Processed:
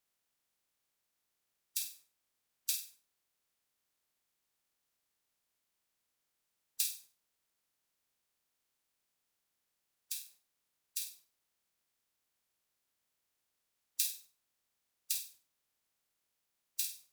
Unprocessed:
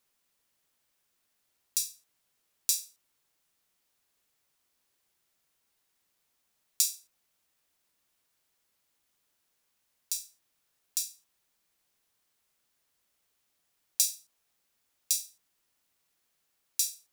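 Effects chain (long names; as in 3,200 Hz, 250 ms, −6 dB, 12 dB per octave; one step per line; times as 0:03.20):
ceiling on every frequency bin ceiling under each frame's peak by 19 dB
pitch vibrato 6.5 Hz 30 cents
flutter between parallel walls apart 8.5 metres, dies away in 0.34 s
level −7 dB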